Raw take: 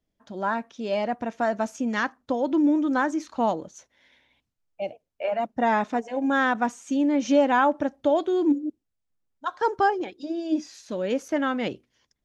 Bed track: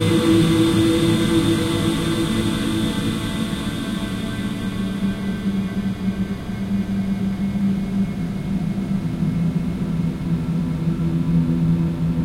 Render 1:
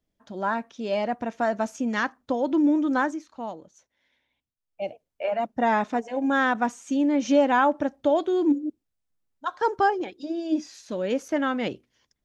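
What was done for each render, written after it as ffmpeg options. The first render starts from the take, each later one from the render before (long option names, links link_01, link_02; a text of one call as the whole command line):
ffmpeg -i in.wav -filter_complex "[0:a]asplit=3[link_01][link_02][link_03];[link_01]atrim=end=3.22,asetpts=PTS-STARTPTS,afade=type=out:start_time=3.04:duration=0.18:silence=0.298538[link_04];[link_02]atrim=start=3.22:end=4.66,asetpts=PTS-STARTPTS,volume=-10.5dB[link_05];[link_03]atrim=start=4.66,asetpts=PTS-STARTPTS,afade=type=in:duration=0.18:silence=0.298538[link_06];[link_04][link_05][link_06]concat=n=3:v=0:a=1" out.wav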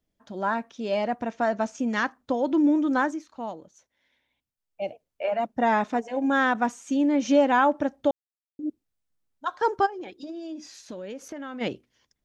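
ffmpeg -i in.wav -filter_complex "[0:a]asettb=1/sr,asplit=3[link_01][link_02][link_03];[link_01]atrim=end=1.314[link_04];[link_02]atrim=start=1.31:end=1.79,asetpts=PTS-STARTPTS,afade=type=in:duration=0.004:curve=qsin,afade=type=out:start_time=0.476:duration=0.004:curve=qsin,lowpass=frequency=7300:width=0.5412,lowpass=frequency=7300:width=1.3066[link_05];[link_03]atrim=start=1.786[link_06];[link_04][link_05]acrossfade=duration=0.004:curve1=hsin:curve2=qsin[link_07];[link_07][link_06]acrossfade=duration=0.004:curve1=qsin:curve2=hsin,asplit=3[link_08][link_09][link_10];[link_08]afade=type=out:start_time=9.85:duration=0.02[link_11];[link_09]acompressor=threshold=-33dB:ratio=10:attack=3.2:release=140:knee=1:detection=peak,afade=type=in:start_time=9.85:duration=0.02,afade=type=out:start_time=11.6:duration=0.02[link_12];[link_10]afade=type=in:start_time=11.6:duration=0.02[link_13];[link_11][link_12][link_13]amix=inputs=3:normalize=0,asplit=3[link_14][link_15][link_16];[link_14]atrim=end=8.11,asetpts=PTS-STARTPTS,afade=type=out:start_time=8.106:duration=0.004:curve=hsin[link_17];[link_15]atrim=start=8.11:end=8.59,asetpts=PTS-STARTPTS,volume=0[link_18];[link_16]atrim=start=8.59,asetpts=PTS-STARTPTS,afade=type=in:duration=0.004:curve=hsin[link_19];[link_17][link_18][link_19]concat=n=3:v=0:a=1" out.wav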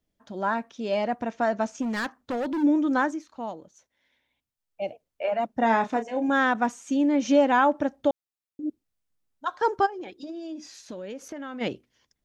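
ffmpeg -i in.wav -filter_complex "[0:a]asplit=3[link_01][link_02][link_03];[link_01]afade=type=out:start_time=1.81:duration=0.02[link_04];[link_02]asoftclip=type=hard:threshold=-25.5dB,afade=type=in:start_time=1.81:duration=0.02,afade=type=out:start_time=2.62:duration=0.02[link_05];[link_03]afade=type=in:start_time=2.62:duration=0.02[link_06];[link_04][link_05][link_06]amix=inputs=3:normalize=0,asettb=1/sr,asplit=3[link_07][link_08][link_09];[link_07]atrim=end=5.584[link_10];[link_08]atrim=start=5.58:end=6.29,asetpts=PTS-STARTPTS,afade=type=in:duration=0.004:curve=qsin,afade=type=out:start_time=0.706:duration=0.004:curve=qsin,asplit=2[link_11][link_12];[link_12]adelay=31,volume=-9dB[link_13];[link_11][link_13]amix=inputs=2:normalize=0,atrim=end_sample=31311[link_14];[link_09]atrim=start=6.286[link_15];[link_10][link_14]acrossfade=duration=0.004:curve1=hsin:curve2=qsin[link_16];[link_16][link_15]acrossfade=duration=0.004:curve1=qsin:curve2=hsin" out.wav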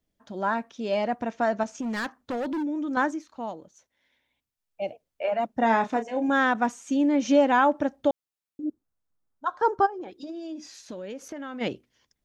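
ffmpeg -i in.wav -filter_complex "[0:a]asettb=1/sr,asplit=3[link_01][link_02][link_03];[link_01]atrim=end=1.634[link_04];[link_02]atrim=start=1.63:end=2.97,asetpts=PTS-STARTPTS,afade=type=in:duration=0.004:curve=qsin,afade=type=out:start_time=1.336:duration=0.004:curve=qsin,acompressor=threshold=-27dB:ratio=6:attack=3.2:release=140:knee=1:detection=peak[link_05];[link_03]atrim=start=2.966[link_06];[link_04][link_05]acrossfade=duration=0.004:curve1=hsin:curve2=qsin[link_07];[link_07][link_06]acrossfade=duration=0.004:curve1=qsin:curve2=hsin,asettb=1/sr,asplit=3[link_08][link_09][link_10];[link_08]atrim=end=8.644[link_11];[link_09]atrim=start=8.64:end=10.11,asetpts=PTS-STARTPTS,afade=type=in:duration=0.004:curve=qsin,afade=type=out:start_time=1.466:duration=0.004:curve=qsin,highshelf=frequency=1700:width_type=q:width=1.5:gain=-6.5[link_12];[link_10]atrim=start=10.106[link_13];[link_11][link_12]acrossfade=duration=0.004:curve1=hsin:curve2=qsin[link_14];[link_14][link_13]acrossfade=duration=0.004:curve1=qsin:curve2=hsin" out.wav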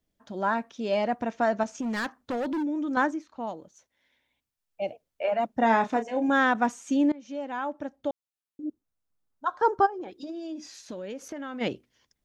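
ffmpeg -i in.wav -filter_complex "[0:a]asettb=1/sr,asplit=3[link_01][link_02][link_03];[link_01]atrim=end=3.074[link_04];[link_02]atrim=start=3.07:end=3.47,asetpts=PTS-STARTPTS,afade=type=in:duration=0.004:curve=qsin,afade=type=out:start_time=0.396:duration=0.004:curve=qsin,highshelf=frequency=5200:gain=-9.5[link_05];[link_03]atrim=start=3.466[link_06];[link_04][link_05]acrossfade=duration=0.004:curve1=hsin:curve2=qsin[link_07];[link_07][link_06]acrossfade=duration=0.004:curve1=qsin:curve2=hsin,asplit=2[link_08][link_09];[link_08]atrim=end=7.12,asetpts=PTS-STARTPTS,afade=type=out:start_time=7.116:duration=0.004:curve=hsin:silence=0.0668344[link_10];[link_09]atrim=start=7.12,asetpts=PTS-STARTPTS,afade=type=in:duration=2.39:silence=0.0668344[link_11];[link_10][link_11]concat=n=2:v=0:a=1" out.wav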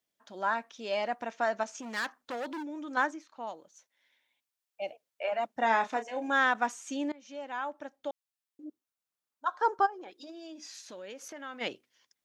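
ffmpeg -i in.wav -af "highpass=frequency=1000:poles=1" out.wav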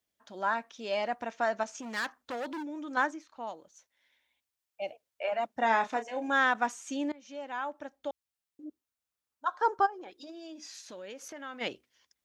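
ffmpeg -i in.wav -af "equalizer=frequency=64:width=1.5:gain=13.5" out.wav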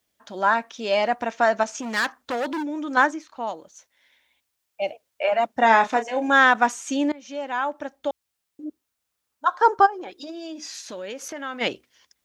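ffmpeg -i in.wav -af "volume=10dB" out.wav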